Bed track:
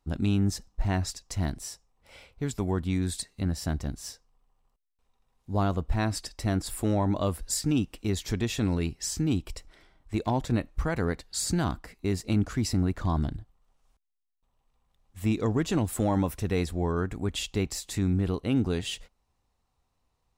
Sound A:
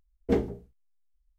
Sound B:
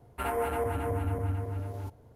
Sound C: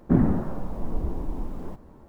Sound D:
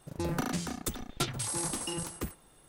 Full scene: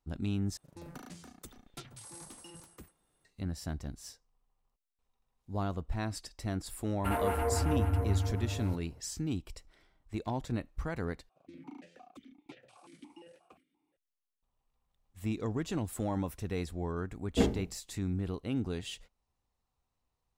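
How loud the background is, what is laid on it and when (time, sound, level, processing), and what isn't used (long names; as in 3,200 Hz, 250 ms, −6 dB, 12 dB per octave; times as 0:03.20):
bed track −8 dB
0:00.57: overwrite with D −15.5 dB
0:06.86: mix in B −1.5 dB + parametric band 79 Hz +7.5 dB 0.36 octaves
0:11.29: overwrite with D −5.5 dB + formant filter that steps through the vowels 5.7 Hz
0:17.08: mix in A + parametric band 420 Hz −5 dB
not used: C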